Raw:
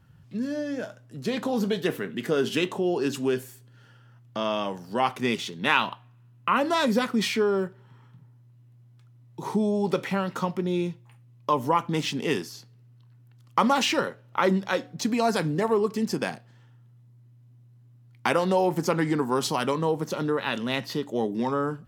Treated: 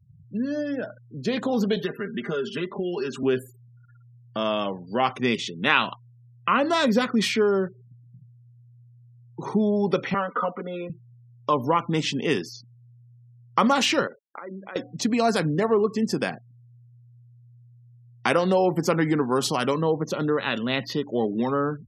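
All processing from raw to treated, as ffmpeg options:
ffmpeg -i in.wav -filter_complex "[0:a]asettb=1/sr,asplit=3[link_01][link_02][link_03];[link_01]atrim=end=1.764[link_04];[link_02]atrim=start=1.76:end=3.23,asetpts=PTS-STARTPTS,afade=type=in:duration=0.004:curve=qsin,afade=type=out:start_time=1.466:duration=0.004:curve=qsin,aecho=1:1:5:0.82,atrim=end_sample=64827,adynamicequalizer=threshold=0.00708:dfrequency=1300:dqfactor=1.6:tfrequency=1300:tqfactor=1.6:attack=5:release=100:ratio=0.375:range=3:mode=boostabove:tftype=bell,acrossover=split=560|1900[link_05][link_06][link_07];[link_05]acompressor=threshold=-31dB:ratio=4[link_08];[link_06]acompressor=threshold=-41dB:ratio=4[link_09];[link_07]acompressor=threshold=-43dB:ratio=4[link_10];[link_08][link_09][link_10]amix=inputs=3:normalize=0[link_11];[link_03]atrim=start=3.226[link_12];[link_04][link_11]acrossfade=duration=0.004:curve1=hsin:curve2=qsin[link_13];[link_13][link_12]acrossfade=duration=0.004:curve1=qsin:curve2=hsin,asettb=1/sr,asplit=3[link_14][link_15][link_16];[link_14]atrim=end=10.144[link_17];[link_15]atrim=start=10.14:end=10.9,asetpts=PTS-STARTPTS,afade=type=in:duration=0.004:curve=qsin,afade=type=out:start_time=0.756:duration=0.004:curve=qsin,highpass=390,equalizer=frequency=430:width_type=q:width=4:gain=4,equalizer=frequency=850:width_type=q:width=4:gain=-5,equalizer=frequency=1200:width_type=q:width=4:gain=8,equalizer=frequency=1800:width_type=q:width=4:gain=-4,equalizer=frequency=2500:width_type=q:width=4:gain=-7,lowpass=frequency=2800:width=0.5412,lowpass=frequency=2800:width=1.3066,aecho=1:1:4.1:0.98,atrim=end_sample=33516[link_18];[link_16]atrim=start=10.896[link_19];[link_17][link_18]acrossfade=duration=0.004:curve1=hsin:curve2=qsin[link_20];[link_20][link_19]acrossfade=duration=0.004:curve1=qsin:curve2=hsin,asettb=1/sr,asplit=3[link_21][link_22][link_23];[link_21]atrim=end=14.074[link_24];[link_22]atrim=start=14.07:end=14.76,asetpts=PTS-STARTPTS,afade=type=in:duration=0.004:curve=qsin,afade=type=out:start_time=0.686:duration=0.004:curve=qsin,agate=range=-33dB:threshold=-50dB:ratio=3:release=100:detection=peak,highpass=220,lowpass=2300,acompressor=threshold=-35dB:ratio=16:attack=3.2:release=140:knee=1:detection=peak[link_25];[link_23]atrim=start=14.756[link_26];[link_24][link_25]acrossfade=duration=0.004:curve1=hsin:curve2=qsin[link_27];[link_27][link_26]acrossfade=duration=0.004:curve1=qsin:curve2=hsin,afftfilt=real='re*gte(hypot(re,im),0.00794)':imag='im*gte(hypot(re,im),0.00794)':win_size=1024:overlap=0.75,equalizer=frequency=910:width_type=o:width=0.23:gain=-5.5,volume=2.5dB" out.wav

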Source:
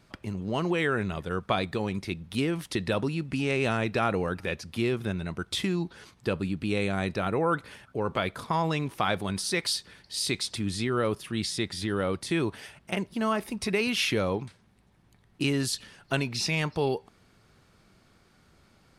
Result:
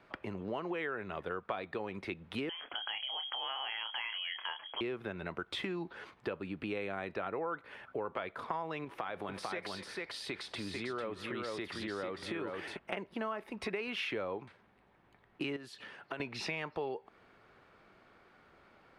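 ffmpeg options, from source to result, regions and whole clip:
ffmpeg -i in.wav -filter_complex "[0:a]asettb=1/sr,asplit=3[link_01][link_02][link_03];[link_01]atrim=end=2.494[link_04];[link_02]atrim=start=2.49:end=4.81,asetpts=PTS-STARTPTS,afade=type=in:duration=0.004:curve=qsin,afade=type=out:start_time=2.316:duration=0.004:curve=qsin,asplit=2[link_05][link_06];[link_06]adelay=27,volume=-8dB[link_07];[link_05][link_07]amix=inputs=2:normalize=0,atrim=end_sample=102312,acompressor=threshold=-31dB:ratio=3:attack=3.2:release=140:knee=1:detection=peak,lowpass=frequency=2900:width_type=q:width=0.5098,lowpass=frequency=2900:width_type=q:width=0.6013,lowpass=frequency=2900:width_type=q:width=0.9,lowpass=frequency=2900:width_type=q:width=2.563,afreqshift=-3400[link_08];[link_03]atrim=start=4.806[link_09];[link_04][link_08]acrossfade=duration=0.004:curve1=hsin:curve2=qsin[link_10];[link_10][link_09]acrossfade=duration=0.004:curve1=qsin:curve2=hsin,asettb=1/sr,asplit=3[link_11][link_12][link_13];[link_11]atrim=end=8.844[link_14];[link_12]atrim=start=8.84:end=12.77,asetpts=PTS-STARTPTS,afade=type=in:duration=0.004:curve=qsin,afade=type=out:start_time=3.926:duration=0.004:curve=qsin,acompressor=threshold=-31dB:ratio=4:attack=3.2:release=140:knee=1:detection=peak,aecho=1:1:246|447:0.112|0.631,atrim=end_sample=173313[link_15];[link_13]atrim=start=12.766[link_16];[link_14][link_15]acrossfade=duration=0.004:curve1=hsin:curve2=qsin[link_17];[link_17][link_16]acrossfade=duration=0.004:curve1=qsin:curve2=hsin,asettb=1/sr,asplit=3[link_18][link_19][link_20];[link_18]atrim=end=15.564[link_21];[link_19]atrim=start=15.56:end=16.2,asetpts=PTS-STARTPTS,afade=type=in:duration=0.004:curve=qsin,afade=type=out:start_time=0.636:duration=0.004:curve=qsin,highpass=93,acompressor=threshold=-36dB:ratio=6:attack=3.2:release=140:knee=1:detection=peak[link_22];[link_20]atrim=start=16.196[link_23];[link_21][link_22]acrossfade=duration=0.004:curve1=hsin:curve2=qsin[link_24];[link_24][link_23]acrossfade=duration=0.004:curve1=qsin:curve2=hsin,acrossover=split=320 2900:gain=0.2 1 0.0891[link_25][link_26][link_27];[link_25][link_26][link_27]amix=inputs=3:normalize=0,acompressor=threshold=-39dB:ratio=5,volume=3.5dB" out.wav

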